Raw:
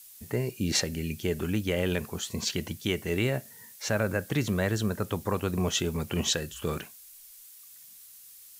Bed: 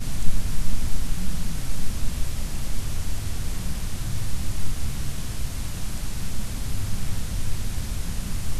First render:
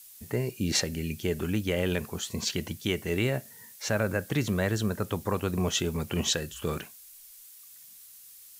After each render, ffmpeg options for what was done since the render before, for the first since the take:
-af anull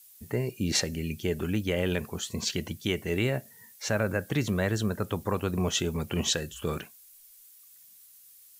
-af "afftdn=nr=6:nf=-51"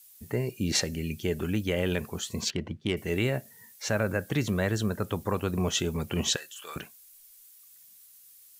-filter_complex "[0:a]asettb=1/sr,asplit=3[s0][s1][s2];[s0]atrim=end=2.504[s3];[s1]atrim=start=2.5:end=2.97,asetpts=PTS-STARTPTS,afade=t=in:d=0.004:c=qsin,afade=t=out:st=0.466:d=0.004:c=qsin,adynamicsmooth=sensitivity=2:basefreq=1700[s4];[s2]atrim=start=2.966[s5];[s3][s4]acrossfade=d=0.004:c1=hsin:c2=qsin[s6];[s6][s5]acrossfade=d=0.004:c1=qsin:c2=hsin,asettb=1/sr,asplit=3[s7][s8][s9];[s7]atrim=end=6.364[s10];[s8]atrim=start=6.36:end=6.76,asetpts=PTS-STARTPTS,afade=t=in:d=0.004:c=qsin,afade=t=out:st=0.396:d=0.004:c=qsin,highpass=1100[s11];[s9]atrim=start=6.756[s12];[s10][s11]acrossfade=d=0.004:c1=hsin:c2=qsin[s13];[s13][s12]acrossfade=d=0.004:c1=qsin:c2=hsin"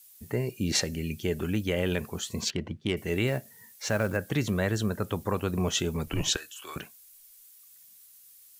-filter_complex "[0:a]asettb=1/sr,asplit=3[s0][s1][s2];[s0]atrim=end=3.274[s3];[s1]atrim=start=3.27:end=4.17,asetpts=PTS-STARTPTS,afade=t=in:d=0.004:c=qsin,afade=t=out:st=0.896:d=0.004:c=qsin,acrusher=bits=6:mode=log:mix=0:aa=0.000001[s4];[s2]atrim=start=4.166[s5];[s3][s4]acrossfade=d=0.004:c1=hsin:c2=qsin[s6];[s6][s5]acrossfade=d=0.004:c1=qsin:c2=hsin,asettb=1/sr,asplit=3[s7][s8][s9];[s7]atrim=end=6.064[s10];[s8]atrim=start=6.06:end=6.76,asetpts=PTS-STARTPTS,afade=t=in:d=0.004:c=qsin,afade=t=out:st=0.696:d=0.004:c=qsin,afreqshift=-68[s11];[s9]atrim=start=6.756[s12];[s10][s11]acrossfade=d=0.004:c1=hsin:c2=qsin[s13];[s13][s12]acrossfade=d=0.004:c1=qsin:c2=hsin"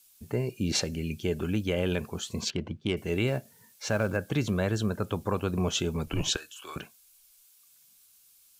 -af "highshelf=f=10000:g=-9.5,bandreject=f=1900:w=6.5"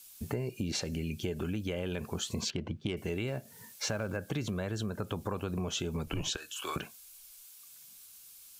-filter_complex "[0:a]asplit=2[s0][s1];[s1]alimiter=level_in=1.06:limit=0.0631:level=0:latency=1:release=47,volume=0.944,volume=1.12[s2];[s0][s2]amix=inputs=2:normalize=0,acompressor=threshold=0.0251:ratio=5"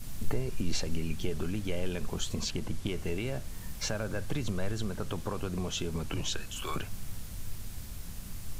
-filter_complex "[1:a]volume=0.211[s0];[0:a][s0]amix=inputs=2:normalize=0"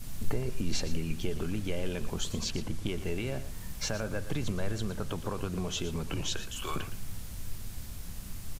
-af "aecho=1:1:117:0.224"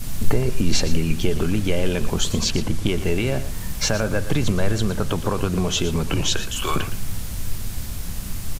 -af "volume=3.98"

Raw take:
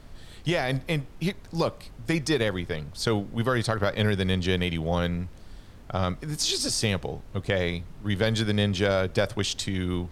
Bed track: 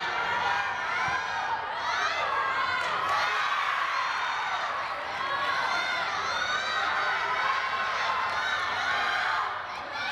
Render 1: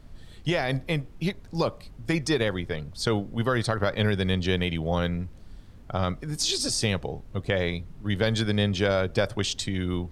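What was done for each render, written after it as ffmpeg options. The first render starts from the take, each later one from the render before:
-af "afftdn=nr=6:nf=-46"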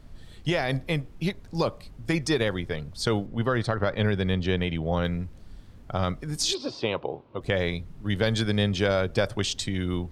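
-filter_complex "[0:a]asettb=1/sr,asplit=3[s0][s1][s2];[s0]atrim=end=3.264[s3];[s1]atrim=start=3.26:end=5.05,asetpts=PTS-STARTPTS,afade=t=in:d=0.004:c=qsin,afade=t=out:st=1.786:d=0.004:c=qsin,lowpass=f=2900:p=1[s4];[s2]atrim=start=5.046[s5];[s3][s4]acrossfade=d=0.004:c1=hsin:c2=qsin[s6];[s6][s5]acrossfade=d=0.004:c1=qsin:c2=hsin,asplit=3[s7][s8][s9];[s7]afade=t=out:st=6.53:d=0.02[s10];[s8]highpass=180,equalizer=f=190:t=q:w=4:g=-8,equalizer=f=350:t=q:w=4:g=4,equalizer=f=560:t=q:w=4:g=4,equalizer=f=1000:t=q:w=4:g=9,equalizer=f=1800:t=q:w=4:g=-9,lowpass=f=3500:w=0.5412,lowpass=f=3500:w=1.3066,afade=t=in:st=6.53:d=0.02,afade=t=out:st=7.4:d=0.02[s11];[s9]afade=t=in:st=7.4:d=0.02[s12];[s10][s11][s12]amix=inputs=3:normalize=0"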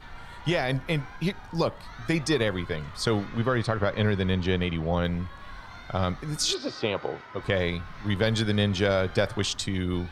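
-filter_complex "[1:a]volume=0.126[s0];[0:a][s0]amix=inputs=2:normalize=0"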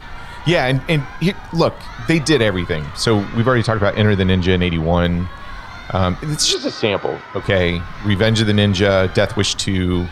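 -af "volume=3.35,alimiter=limit=0.794:level=0:latency=1"

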